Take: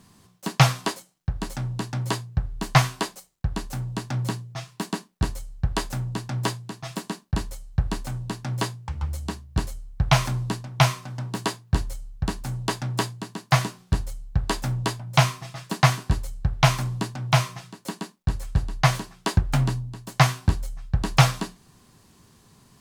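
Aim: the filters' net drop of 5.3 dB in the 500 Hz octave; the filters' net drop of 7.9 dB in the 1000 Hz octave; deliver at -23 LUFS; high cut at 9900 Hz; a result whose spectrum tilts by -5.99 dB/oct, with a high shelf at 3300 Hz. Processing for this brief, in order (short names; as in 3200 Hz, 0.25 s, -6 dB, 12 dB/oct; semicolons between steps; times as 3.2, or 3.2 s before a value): LPF 9900 Hz; bell 500 Hz -4 dB; bell 1000 Hz -8 dB; high shelf 3300 Hz -8.5 dB; gain +5 dB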